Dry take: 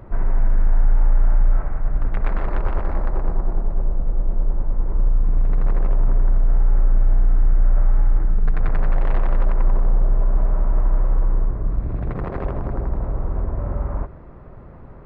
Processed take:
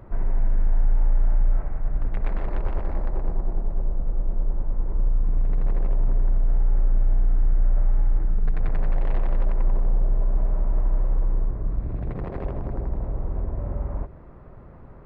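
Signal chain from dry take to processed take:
dynamic equaliser 1,300 Hz, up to −6 dB, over −47 dBFS, Q 1.5
level −4 dB

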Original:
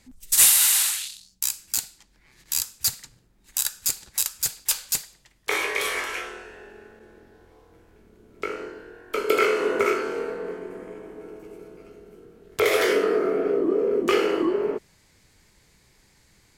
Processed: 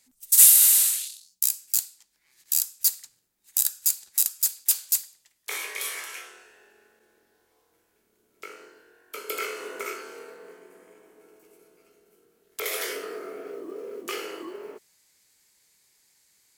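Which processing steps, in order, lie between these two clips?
RIAA equalisation recording
noise that follows the level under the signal 29 dB
level −11.5 dB

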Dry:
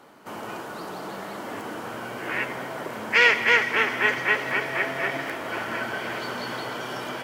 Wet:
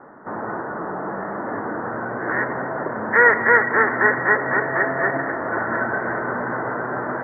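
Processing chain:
Butterworth low-pass 1,900 Hz 96 dB per octave
level +7.5 dB

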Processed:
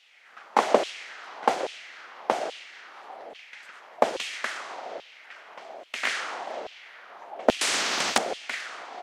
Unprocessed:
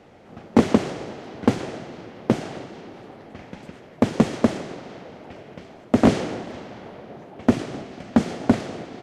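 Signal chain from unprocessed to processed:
auto-filter high-pass saw down 1.2 Hz 520–3,200 Hz
0:07.61–0:08.18: every bin compressed towards the loudest bin 4 to 1

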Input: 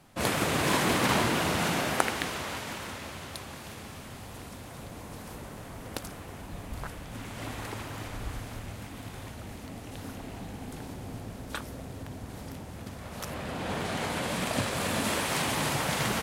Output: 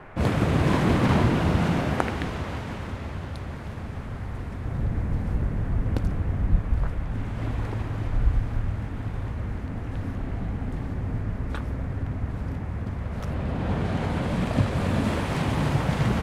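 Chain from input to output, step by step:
0:04.65–0:06.59: low-shelf EQ 350 Hz +7 dB
noise in a band 330–2,100 Hz −47 dBFS
RIAA equalisation playback

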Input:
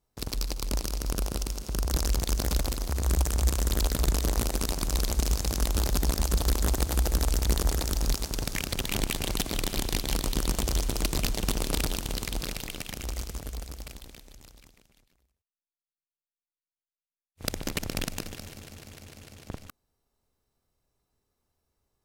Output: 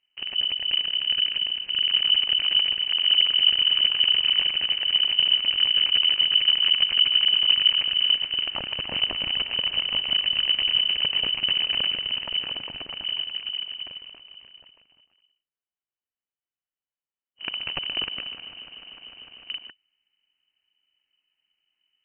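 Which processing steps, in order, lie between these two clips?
sub-octave generator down 2 octaves, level 0 dB
voice inversion scrambler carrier 3,000 Hz

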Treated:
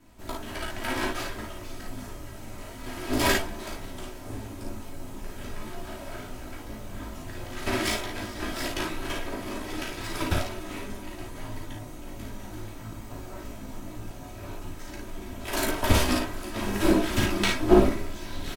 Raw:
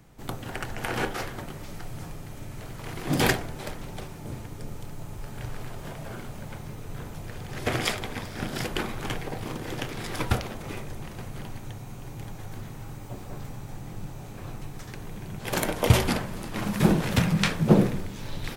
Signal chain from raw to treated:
lower of the sound and its delayed copy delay 3.1 ms
multi-voice chorus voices 6, 0.18 Hz, delay 15 ms, depth 4.7 ms
ambience of single reflections 36 ms −5.5 dB, 55 ms −4 dB
level +2.5 dB

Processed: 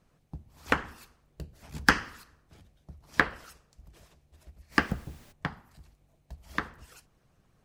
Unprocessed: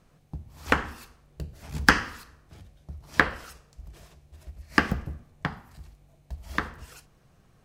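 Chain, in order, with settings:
harmonic and percussive parts rebalanced harmonic −8 dB
0:04.71–0:05.31: background noise pink −53 dBFS
level −3 dB

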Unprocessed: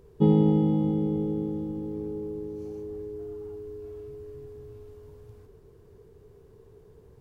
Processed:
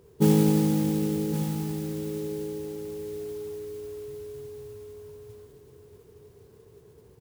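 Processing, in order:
high-pass filter 78 Hz
noise that follows the level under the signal 17 dB
single-tap delay 1,117 ms −9.5 dB

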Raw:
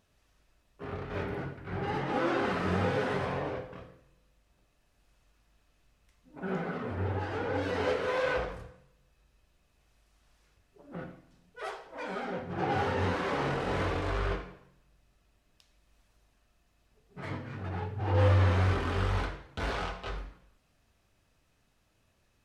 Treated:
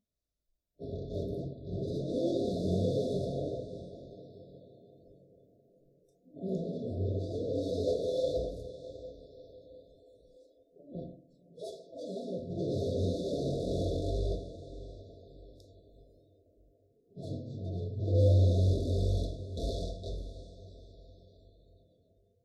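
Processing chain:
feedback delay with all-pass diffusion 632 ms, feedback 45%, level −14.5 dB
noise reduction from a noise print of the clip's start 20 dB
brick-wall band-stop 710–3,400 Hz

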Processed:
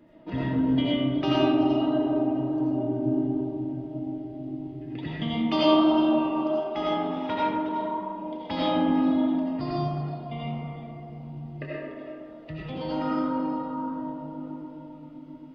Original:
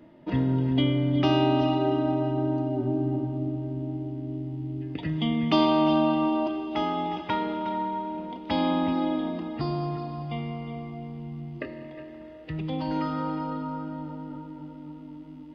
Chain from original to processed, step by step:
flanger 1.5 Hz, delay 3 ms, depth 9.3 ms, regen −78%
reverb reduction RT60 1.5 s
on a send: feedback echo with a band-pass in the loop 131 ms, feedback 75%, band-pass 620 Hz, level −6 dB
on the sum: comb and all-pass reverb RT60 1.2 s, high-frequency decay 0.55×, pre-delay 45 ms, DRR −6 dB

